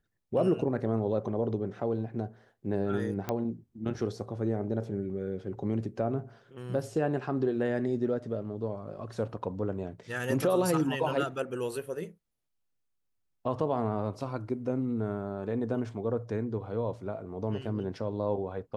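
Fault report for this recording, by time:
0:03.29: click −17 dBFS

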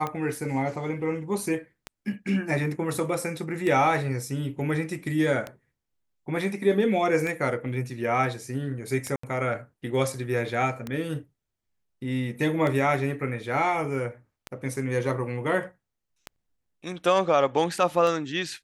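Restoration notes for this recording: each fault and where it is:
scratch tick 33 1/3 rpm −17 dBFS
0:09.16–0:09.23: drop-out 74 ms

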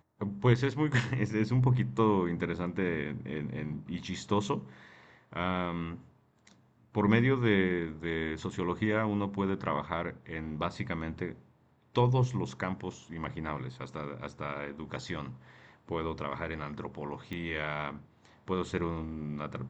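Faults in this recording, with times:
0:17.33: click −26 dBFS

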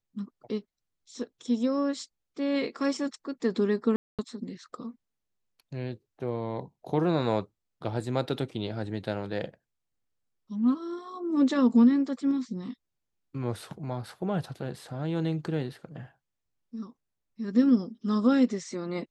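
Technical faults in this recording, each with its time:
0:03.96–0:04.19: drop-out 227 ms

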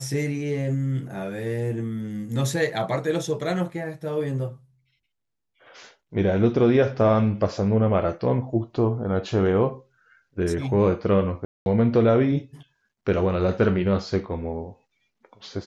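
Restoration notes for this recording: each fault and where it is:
0:11.45–0:11.66: drop-out 211 ms

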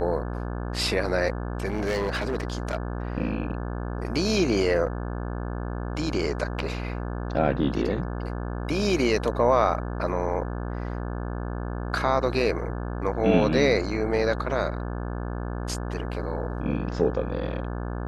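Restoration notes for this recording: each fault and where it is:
mains buzz 60 Hz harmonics 29 −31 dBFS
0:01.66–0:02.77: clipping −22 dBFS

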